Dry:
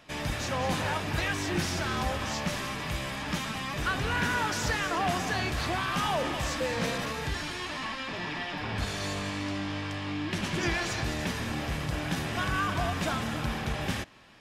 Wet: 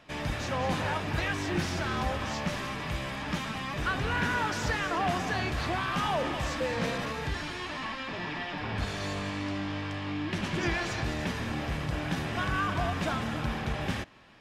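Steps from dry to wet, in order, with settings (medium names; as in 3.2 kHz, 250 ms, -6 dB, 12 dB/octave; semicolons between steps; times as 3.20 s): treble shelf 5.4 kHz -9 dB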